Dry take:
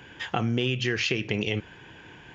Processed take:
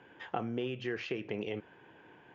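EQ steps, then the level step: band-pass filter 580 Hz, Q 0.67; -5.0 dB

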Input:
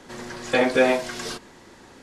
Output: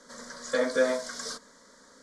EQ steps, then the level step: distance through air 84 m; tone controls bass -9 dB, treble +13 dB; static phaser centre 530 Hz, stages 8; -3.5 dB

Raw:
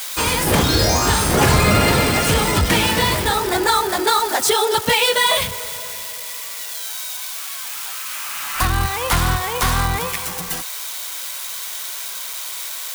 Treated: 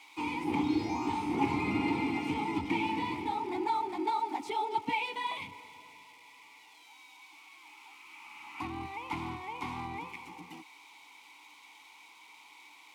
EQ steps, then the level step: vowel filter u; high-pass 70 Hz; peaking EQ 90 Hz +5.5 dB 0.93 oct; -2.5 dB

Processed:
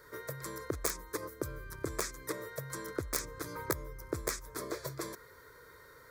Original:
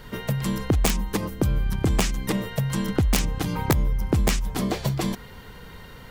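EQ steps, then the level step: high-pass 330 Hz 6 dB/octave; static phaser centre 780 Hz, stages 6; -6.0 dB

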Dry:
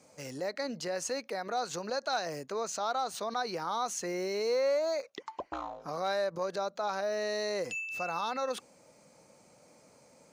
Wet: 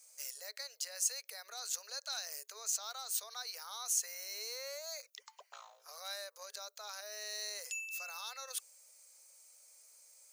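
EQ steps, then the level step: rippled Chebyshev high-pass 410 Hz, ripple 3 dB; differentiator; treble shelf 6.7 kHz +12 dB; +2.5 dB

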